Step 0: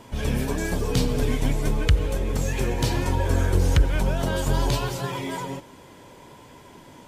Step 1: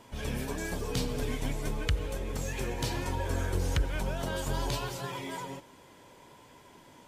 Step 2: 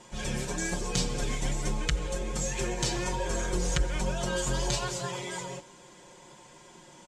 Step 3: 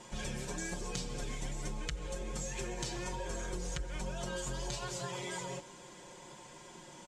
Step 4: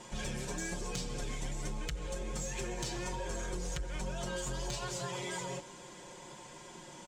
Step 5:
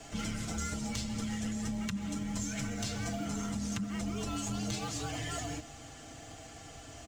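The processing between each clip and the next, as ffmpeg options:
-af "lowshelf=f=440:g=-4.5,volume=0.501"
-af "lowpass=f=7400:t=q:w=2.7,aecho=1:1:5.6:0.82"
-af "acompressor=threshold=0.0141:ratio=4"
-af "asoftclip=type=tanh:threshold=0.0316,volume=1.26"
-filter_complex "[0:a]acrossover=split=230|610|2300[s0][s1][s2][s3];[s2]acrusher=bits=4:mode=log:mix=0:aa=0.000001[s4];[s0][s1][s4][s3]amix=inputs=4:normalize=0,afreqshift=-250,volume=1.19"

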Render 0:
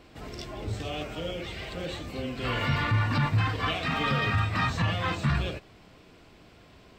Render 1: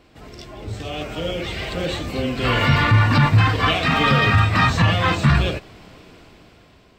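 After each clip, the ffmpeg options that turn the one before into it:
-af "dynaudnorm=f=310:g=7:m=3.35"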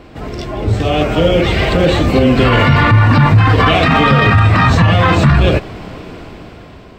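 -af "highshelf=f=2500:g=-10,alimiter=level_in=7.08:limit=0.891:release=50:level=0:latency=1,volume=0.891"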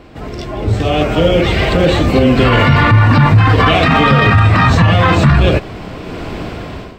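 -af "dynaudnorm=f=400:g=3:m=3.76,volume=0.891"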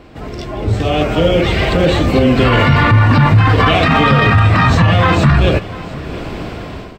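-af "aecho=1:1:697:0.112,volume=0.891"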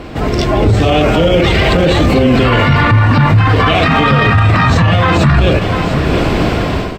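-af "alimiter=level_in=4.73:limit=0.891:release=50:level=0:latency=1,volume=0.841" -ar 48000 -c:a libopus -b:a 64k

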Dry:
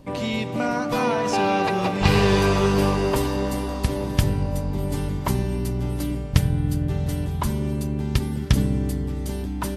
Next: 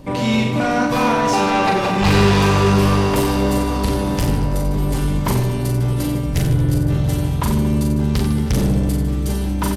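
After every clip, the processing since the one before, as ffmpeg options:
-af "asoftclip=type=tanh:threshold=0.0944,aecho=1:1:40|90|152.5|230.6|328.3:0.631|0.398|0.251|0.158|0.1,volume=2.24"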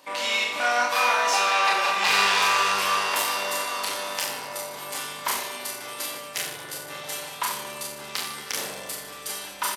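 -filter_complex "[0:a]highpass=1100,asplit=2[s0][s1];[s1]adelay=29,volume=0.668[s2];[s0][s2]amix=inputs=2:normalize=0"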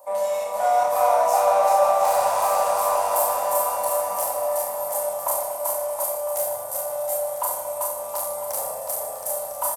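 -filter_complex "[0:a]firequalizer=gain_entry='entry(100,0);entry(160,-16);entry(250,-16);entry(380,-18);entry(570,13);entry(1600,-16);entry(3000,-23);entry(8300,2);entry(13000,7)':delay=0.05:min_phase=1,asplit=2[s0][s1];[s1]volume=22.4,asoftclip=hard,volume=0.0447,volume=0.355[s2];[s0][s2]amix=inputs=2:normalize=0,aecho=1:1:390|721.5|1003|1243|1446:0.631|0.398|0.251|0.158|0.1,volume=0.841"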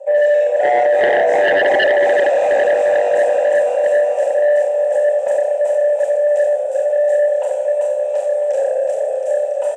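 -filter_complex "[0:a]asplit=3[s0][s1][s2];[s0]bandpass=f=530:t=q:w=8,volume=1[s3];[s1]bandpass=f=1840:t=q:w=8,volume=0.501[s4];[s2]bandpass=f=2480:t=q:w=8,volume=0.355[s5];[s3][s4][s5]amix=inputs=3:normalize=0,highpass=f=300:w=0.5412,highpass=f=300:w=1.3066,equalizer=f=440:t=q:w=4:g=5,equalizer=f=750:t=q:w=4:g=4,equalizer=f=1100:t=q:w=4:g=-8,equalizer=f=2000:t=q:w=4:g=-7,equalizer=f=4600:t=q:w=4:g=-10,equalizer=f=7600:t=q:w=4:g=8,lowpass=f=7700:w=0.5412,lowpass=f=7700:w=1.3066,aeval=exprs='0.178*sin(PI/2*3.55*val(0)/0.178)':c=same,volume=1.78"

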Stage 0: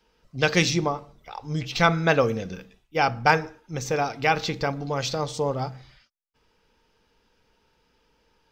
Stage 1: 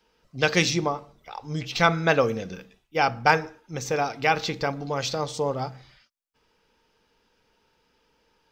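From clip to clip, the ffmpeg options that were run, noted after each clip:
-af "lowshelf=f=120:g=-6.5"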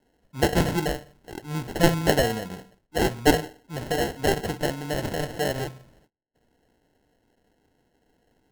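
-af "acrusher=samples=37:mix=1:aa=0.000001"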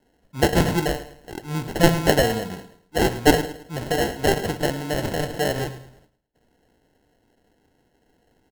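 -af "aecho=1:1:108|216|324:0.188|0.0659|0.0231,volume=1.41"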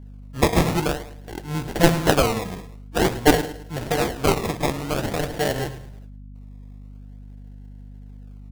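-af "acrusher=samples=17:mix=1:aa=0.000001:lfo=1:lforange=27.2:lforate=0.49,aeval=exprs='val(0)+0.0112*(sin(2*PI*50*n/s)+sin(2*PI*2*50*n/s)/2+sin(2*PI*3*50*n/s)/3+sin(2*PI*4*50*n/s)/4+sin(2*PI*5*50*n/s)/5)':c=same"

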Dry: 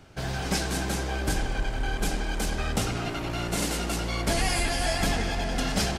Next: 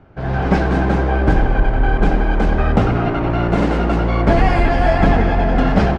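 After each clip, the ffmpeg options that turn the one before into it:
-af "lowpass=1400,dynaudnorm=f=180:g=3:m=2.82,volume=1.78"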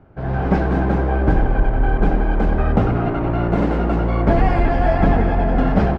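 -af "highshelf=f=2300:g=-10.5,volume=0.841"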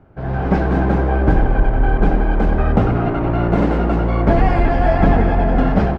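-af "dynaudnorm=f=400:g=3:m=1.78"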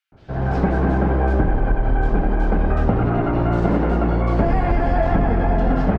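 -filter_complex "[0:a]acrossover=split=3000[s0][s1];[s0]adelay=120[s2];[s2][s1]amix=inputs=2:normalize=0,acompressor=threshold=0.224:ratio=6"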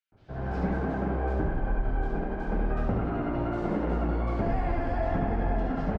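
-filter_complex "[0:a]flanger=delay=8.1:depth=5.4:regen=-53:speed=1.1:shape=sinusoidal,asplit=2[s0][s1];[s1]aecho=0:1:72:0.562[s2];[s0][s2]amix=inputs=2:normalize=0,volume=0.447"

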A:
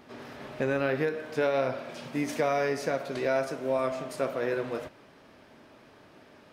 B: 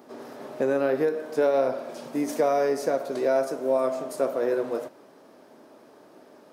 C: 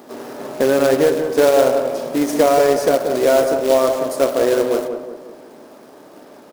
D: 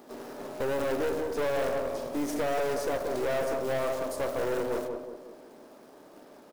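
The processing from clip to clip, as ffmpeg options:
-af "highpass=310,equalizer=f=2500:w=0.58:g=-14.5,volume=2.51"
-filter_complex "[0:a]acrusher=bits=3:mode=log:mix=0:aa=0.000001,asplit=2[s0][s1];[s1]adelay=182,lowpass=f=1100:p=1,volume=0.501,asplit=2[s2][s3];[s3]adelay=182,lowpass=f=1100:p=1,volume=0.49,asplit=2[s4][s5];[s5]adelay=182,lowpass=f=1100:p=1,volume=0.49,asplit=2[s6][s7];[s7]adelay=182,lowpass=f=1100:p=1,volume=0.49,asplit=2[s8][s9];[s9]adelay=182,lowpass=f=1100:p=1,volume=0.49,asplit=2[s10][s11];[s11]adelay=182,lowpass=f=1100:p=1,volume=0.49[s12];[s2][s4][s6][s8][s10][s12]amix=inputs=6:normalize=0[s13];[s0][s13]amix=inputs=2:normalize=0,volume=2.66"
-af "aeval=exprs='(tanh(7.94*val(0)+0.45)-tanh(0.45))/7.94':c=same,volume=0.398"

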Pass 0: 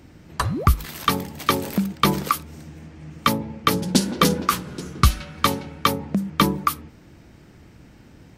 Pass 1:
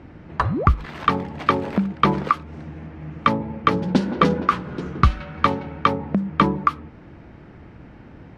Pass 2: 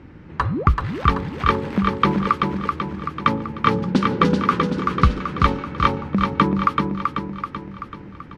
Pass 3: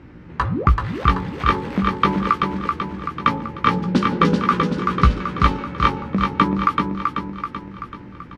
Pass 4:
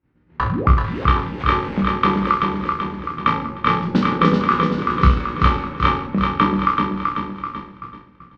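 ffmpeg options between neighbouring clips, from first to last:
-filter_complex "[0:a]lowpass=2300,equalizer=f=890:t=o:w=2:g=3,asplit=2[s0][s1];[s1]acompressor=threshold=0.0398:ratio=6,volume=0.944[s2];[s0][s2]amix=inputs=2:normalize=0,volume=0.841"
-af "equalizer=f=670:t=o:w=0.33:g=-10.5,aecho=1:1:383|766|1149|1532|1915|2298|2681:0.631|0.341|0.184|0.0994|0.0537|0.029|0.0156"
-filter_complex "[0:a]asplit=2[s0][s1];[s1]adelay=17,volume=0.447[s2];[s0][s2]amix=inputs=2:normalize=0,bandreject=f=110.4:t=h:w=4,bandreject=f=220.8:t=h:w=4,bandreject=f=331.2:t=h:w=4,bandreject=f=441.6:t=h:w=4,bandreject=f=552:t=h:w=4,bandreject=f=662.4:t=h:w=4,bandreject=f=772.8:t=h:w=4,bandreject=f=883.2:t=h:w=4"
-af "lowpass=4500,agate=range=0.0224:threshold=0.0398:ratio=3:detection=peak,aecho=1:1:30|63|99.3|139.2|183.2:0.631|0.398|0.251|0.158|0.1,volume=0.891"

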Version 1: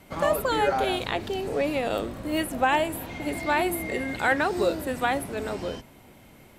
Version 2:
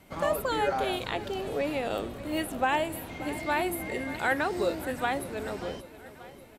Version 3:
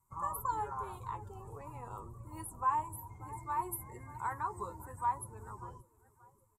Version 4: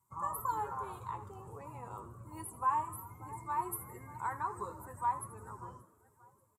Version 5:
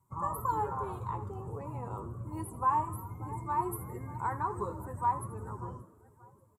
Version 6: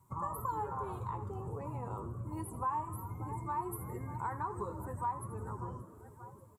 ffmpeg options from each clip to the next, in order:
-af "aecho=1:1:584|1168|1752|2336|2920:0.158|0.0856|0.0462|0.025|0.0135,volume=0.631"
-af "afftdn=nr=14:nf=-39,firequalizer=gain_entry='entry(120,0);entry(240,-20);entry(390,-13);entry(650,-25);entry(990,9);entry(1500,-15);entry(3200,-29);entry(7300,6);entry(12000,2)':delay=0.05:min_phase=1,flanger=delay=8.1:depth=1.8:regen=39:speed=0.52:shape=triangular,volume=1.12"
-filter_complex "[0:a]highpass=87,asplit=6[s0][s1][s2][s3][s4][s5];[s1]adelay=81,afreqshift=69,volume=0.178[s6];[s2]adelay=162,afreqshift=138,volume=0.0871[s7];[s3]adelay=243,afreqshift=207,volume=0.0427[s8];[s4]adelay=324,afreqshift=276,volume=0.0209[s9];[s5]adelay=405,afreqshift=345,volume=0.0102[s10];[s0][s6][s7][s8][s9][s10]amix=inputs=6:normalize=0"
-af "tiltshelf=f=880:g=6.5,volume=1.58"
-af "acompressor=threshold=0.00316:ratio=2,volume=2.11"

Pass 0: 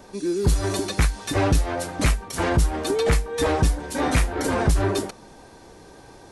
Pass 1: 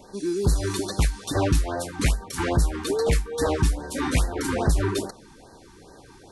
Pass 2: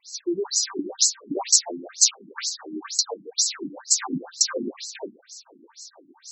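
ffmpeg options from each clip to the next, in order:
-af "afftfilt=real='re*(1-between(b*sr/1024,540*pow(2800/540,0.5+0.5*sin(2*PI*2.4*pts/sr))/1.41,540*pow(2800/540,0.5+0.5*sin(2*PI*2.4*pts/sr))*1.41))':imag='im*(1-between(b*sr/1024,540*pow(2800/540,0.5+0.5*sin(2*PI*2.4*pts/sr))/1.41,540*pow(2800/540,0.5+0.5*sin(2*PI*2.4*pts/sr))*1.41))':win_size=1024:overlap=0.75,volume=0.841"
-af "aexciter=amount=9.6:drive=6.3:freq=4500,afftfilt=real='re*between(b*sr/1024,240*pow(5800/240,0.5+0.5*sin(2*PI*2.1*pts/sr))/1.41,240*pow(5800/240,0.5+0.5*sin(2*PI*2.1*pts/sr))*1.41)':imag='im*between(b*sr/1024,240*pow(5800/240,0.5+0.5*sin(2*PI*2.1*pts/sr))/1.41,240*pow(5800/240,0.5+0.5*sin(2*PI*2.1*pts/sr))*1.41)':win_size=1024:overlap=0.75,volume=1.33"

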